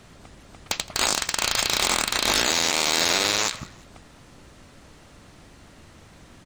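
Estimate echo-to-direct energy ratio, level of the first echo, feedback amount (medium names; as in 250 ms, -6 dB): -21.0 dB, -21.5 dB, 33%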